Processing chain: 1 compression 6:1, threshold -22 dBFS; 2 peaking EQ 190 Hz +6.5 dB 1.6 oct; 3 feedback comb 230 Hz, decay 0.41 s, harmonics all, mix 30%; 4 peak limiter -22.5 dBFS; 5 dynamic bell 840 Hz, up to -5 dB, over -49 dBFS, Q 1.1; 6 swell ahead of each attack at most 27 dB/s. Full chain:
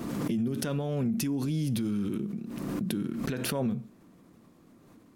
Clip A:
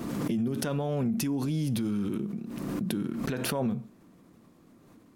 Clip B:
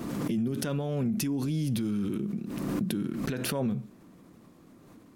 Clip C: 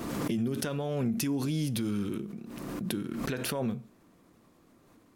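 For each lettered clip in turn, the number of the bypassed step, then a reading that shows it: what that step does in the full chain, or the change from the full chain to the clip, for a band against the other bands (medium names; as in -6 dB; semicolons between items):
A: 5, 1 kHz band +2.5 dB; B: 3, momentary loudness spread change -2 LU; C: 2, 125 Hz band -3.0 dB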